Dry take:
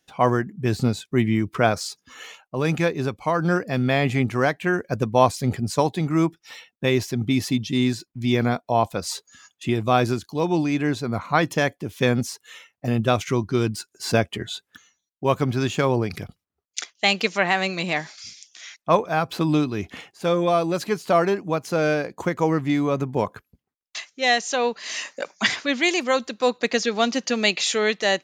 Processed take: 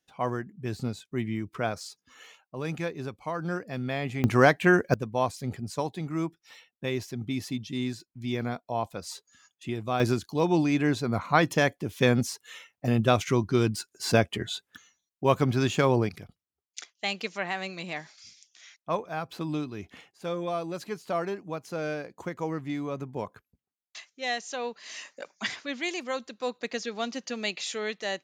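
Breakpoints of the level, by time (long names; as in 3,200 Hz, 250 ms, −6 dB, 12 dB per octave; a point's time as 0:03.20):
−10.5 dB
from 0:04.24 +2 dB
from 0:04.94 −10 dB
from 0:10.00 −2 dB
from 0:16.09 −11 dB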